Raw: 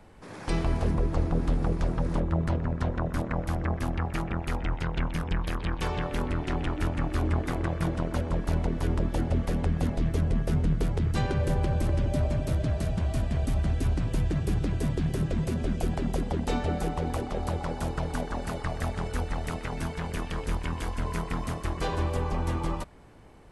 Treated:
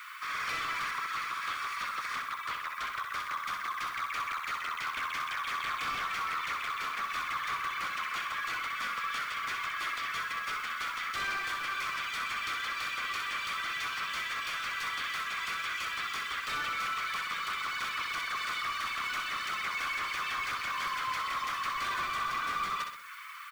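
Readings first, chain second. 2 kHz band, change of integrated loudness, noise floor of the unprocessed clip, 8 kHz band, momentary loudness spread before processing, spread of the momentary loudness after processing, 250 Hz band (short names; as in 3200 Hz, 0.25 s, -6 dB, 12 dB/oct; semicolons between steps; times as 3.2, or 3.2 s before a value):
+8.5 dB, -3.5 dB, -40 dBFS, +1.0 dB, 6 LU, 2 LU, -25.5 dB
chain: median filter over 5 samples; steep high-pass 1100 Hz 96 dB/oct; comb 0.9 ms, depth 33%; reverb removal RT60 0.52 s; overdrive pedal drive 28 dB, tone 2600 Hz, clips at -21 dBFS; limiter -30 dBFS, peak gain reduction 7.5 dB; added noise blue -61 dBFS; flutter echo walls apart 10.9 m, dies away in 0.64 s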